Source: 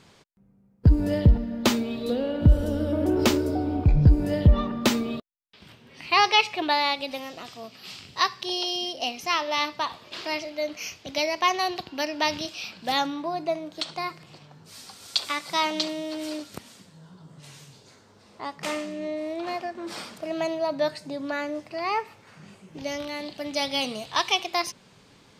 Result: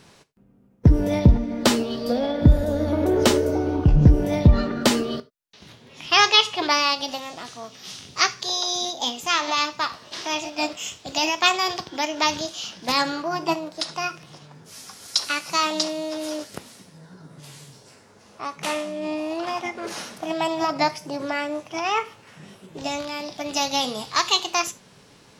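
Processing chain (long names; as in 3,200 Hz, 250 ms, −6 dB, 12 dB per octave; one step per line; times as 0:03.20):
formants moved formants +3 semitones
reverb whose tail is shaped and stops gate 110 ms falling, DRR 11.5 dB
level +3 dB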